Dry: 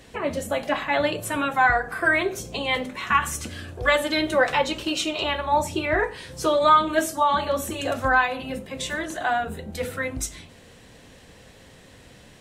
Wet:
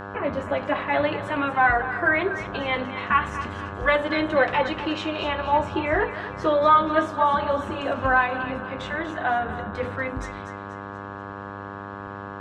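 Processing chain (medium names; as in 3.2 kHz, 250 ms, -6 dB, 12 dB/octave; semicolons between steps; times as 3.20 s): low-pass 2.5 kHz 12 dB/octave; mains buzz 100 Hz, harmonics 17, -36 dBFS -1 dB/octave; on a send: thinning echo 241 ms, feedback 46%, high-pass 830 Hz, level -10 dB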